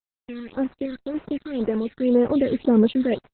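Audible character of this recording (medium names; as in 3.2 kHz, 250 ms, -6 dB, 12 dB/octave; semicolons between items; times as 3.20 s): random-step tremolo, depth 90%; a quantiser's noise floor 6-bit, dither none; phasing stages 8, 1.9 Hz, lowest notch 780–4100 Hz; Opus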